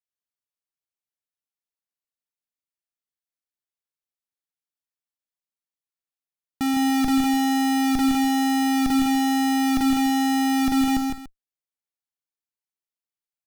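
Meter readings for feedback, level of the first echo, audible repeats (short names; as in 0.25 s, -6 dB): no steady repeat, -15.0 dB, 4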